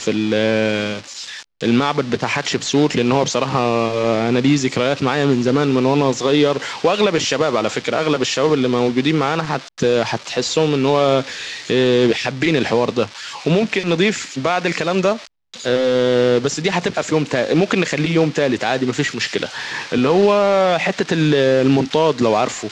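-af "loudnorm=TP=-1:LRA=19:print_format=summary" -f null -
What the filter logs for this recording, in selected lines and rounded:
Input Integrated:    -17.3 LUFS
Input True Peak:      -2.8 dBTP
Input LRA:             2.8 LU
Input Threshold:     -27.4 LUFS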